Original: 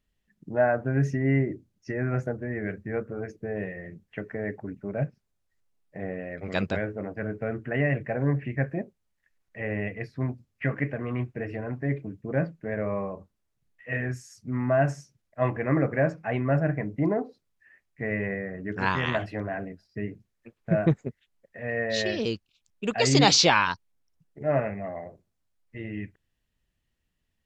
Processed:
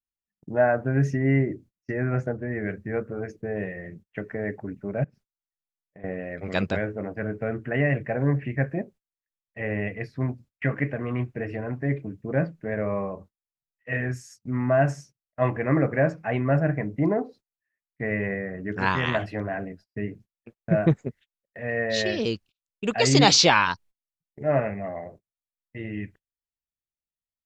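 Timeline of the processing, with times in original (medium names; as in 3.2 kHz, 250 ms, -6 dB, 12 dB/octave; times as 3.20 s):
2.04–2.52 s: distance through air 50 m
5.04–6.04 s: compression, threshold -45 dBFS
whole clip: gate -49 dBFS, range -28 dB; trim +2 dB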